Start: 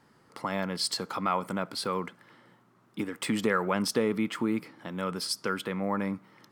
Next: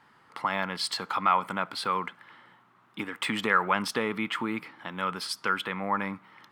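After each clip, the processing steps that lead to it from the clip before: high-order bell 1.7 kHz +10 dB 2.6 oct; trim -4 dB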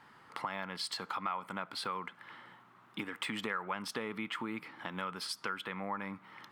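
compression 3:1, threshold -39 dBFS, peak gain reduction 16 dB; trim +1 dB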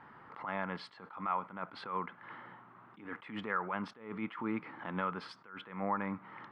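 low-pass 1.7 kHz 12 dB/octave; attacks held to a fixed rise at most 110 dB/s; trim +5 dB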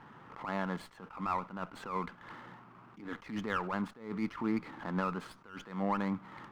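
peaking EQ 150 Hz +5.5 dB 2.5 oct; sliding maximum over 5 samples

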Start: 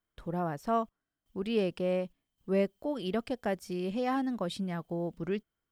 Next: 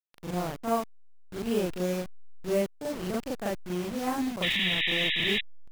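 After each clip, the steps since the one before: send-on-delta sampling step -34 dBFS; reverse echo 39 ms -4 dB; painted sound noise, 4.42–5.41 s, 1.7–3.9 kHz -28 dBFS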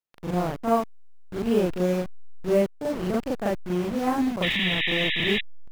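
treble shelf 2.8 kHz -9 dB; trim +6 dB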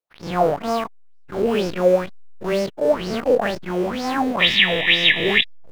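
every event in the spectrogram widened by 60 ms; in parallel at -6.5 dB: hysteresis with a dead band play -35.5 dBFS; on the sum: sweeping bell 2.1 Hz 460–5400 Hz +18 dB; trim -6.5 dB

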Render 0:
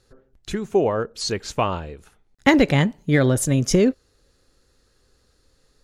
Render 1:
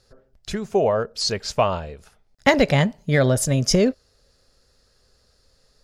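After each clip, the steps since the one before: graphic EQ with 31 bands 315 Hz -10 dB, 630 Hz +7 dB, 5 kHz +8 dB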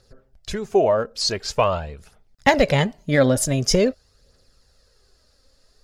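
phaser 0.46 Hz, delay 3.9 ms, feedback 41%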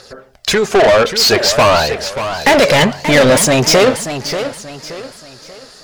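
overdrive pedal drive 32 dB, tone 5.7 kHz, clips at -1 dBFS; de-hum 69.97 Hz, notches 2; modulated delay 582 ms, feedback 36%, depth 160 cents, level -10 dB; trim -1 dB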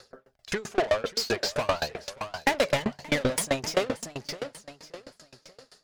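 sawtooth tremolo in dB decaying 7.7 Hz, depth 27 dB; trim -9 dB

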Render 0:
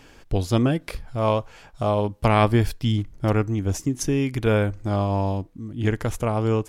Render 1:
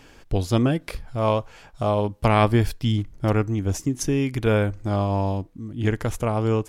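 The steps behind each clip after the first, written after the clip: no audible change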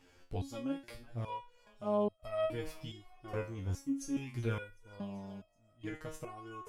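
thinning echo 379 ms, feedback 67%, high-pass 380 Hz, level -21 dB; resonator arpeggio 2.4 Hz 89–640 Hz; trim -4.5 dB

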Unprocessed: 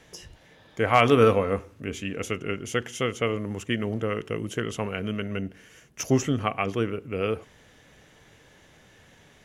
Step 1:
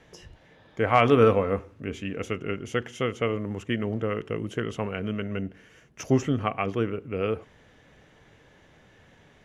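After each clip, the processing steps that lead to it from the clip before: low-pass 2.5 kHz 6 dB/octave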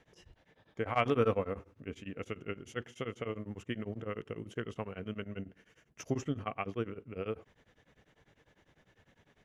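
tremolo of two beating tones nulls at 10 Hz; trim -7.5 dB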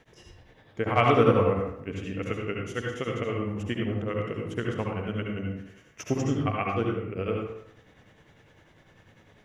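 reverberation RT60 0.75 s, pre-delay 63 ms, DRR 0 dB; trim +6 dB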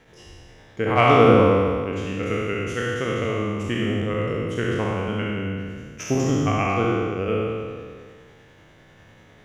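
spectral sustain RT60 1.90 s; trim +2.5 dB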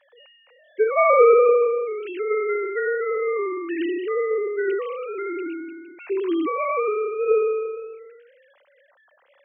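formants replaced by sine waves

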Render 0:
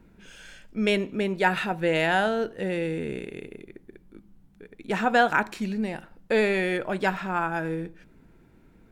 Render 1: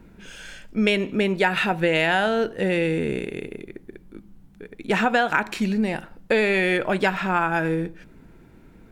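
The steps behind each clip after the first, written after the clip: dynamic bell 2.6 kHz, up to +4 dB, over -40 dBFS, Q 1.2; compression 6:1, threshold -23 dBFS, peak gain reduction 9 dB; trim +6.5 dB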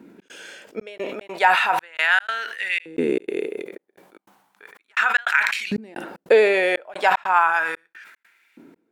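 LFO high-pass saw up 0.35 Hz 260–2400 Hz; trance gate "xx.xxxxx.." 151 bpm -60 dB; decay stretcher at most 56 dB/s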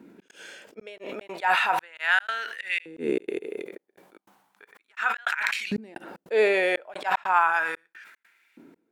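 slow attack 109 ms; trim -3.5 dB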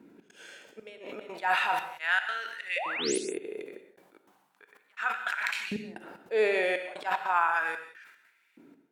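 painted sound rise, 2.76–3.18 s, 490–11000 Hz -29 dBFS; gated-style reverb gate 210 ms flat, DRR 7.5 dB; trim -5 dB

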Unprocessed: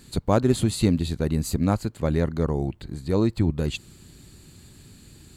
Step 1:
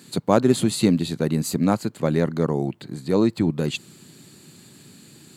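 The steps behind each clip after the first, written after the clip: high-pass 140 Hz 24 dB/octave; trim +3.5 dB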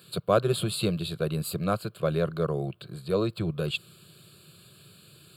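peaking EQ 440 Hz -3 dB 1.1 oct; static phaser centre 1.3 kHz, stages 8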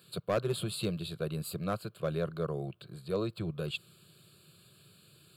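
hard clipper -16 dBFS, distortion -18 dB; trim -6.5 dB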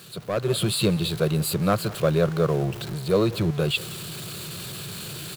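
jump at every zero crossing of -42 dBFS; echo from a far wall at 31 m, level -20 dB; level rider gain up to 11 dB

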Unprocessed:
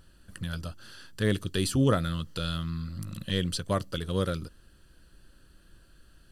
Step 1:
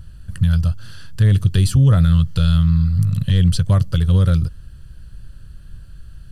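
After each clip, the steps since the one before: resonant low shelf 190 Hz +14 dB, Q 1.5; peak limiter -11.5 dBFS, peak gain reduction 8 dB; trim +5.5 dB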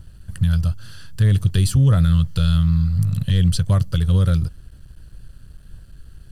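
crossover distortion -48.5 dBFS; treble shelf 6.4 kHz +4.5 dB; trim -2 dB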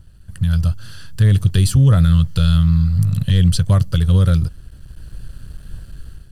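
level rider gain up to 11.5 dB; trim -3.5 dB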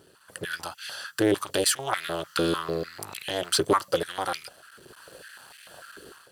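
saturation -13 dBFS, distortion -12 dB; step-sequenced high-pass 6.7 Hz 400–2200 Hz; trim +3 dB

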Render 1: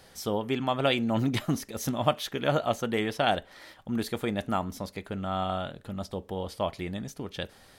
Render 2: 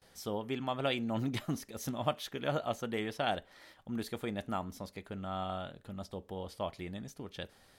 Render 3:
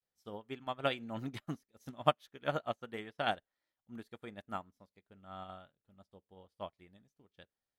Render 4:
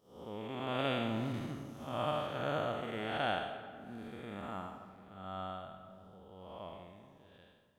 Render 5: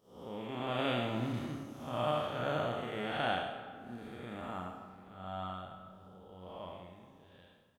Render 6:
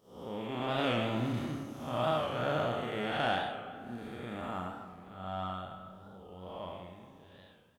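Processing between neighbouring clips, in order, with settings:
gate with hold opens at -47 dBFS; trim -7.5 dB
dynamic bell 1.5 kHz, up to +4 dB, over -51 dBFS, Q 1.2; upward expansion 2.5:1, over -50 dBFS; trim +4 dB
spectral blur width 280 ms; algorithmic reverb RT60 2.2 s, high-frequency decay 0.45×, pre-delay 120 ms, DRR 11.5 dB; trim +8 dB
doubling 33 ms -5 dB
in parallel at -6 dB: saturation -32.5 dBFS, distortion -11 dB; on the sum: warped record 45 rpm, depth 100 cents

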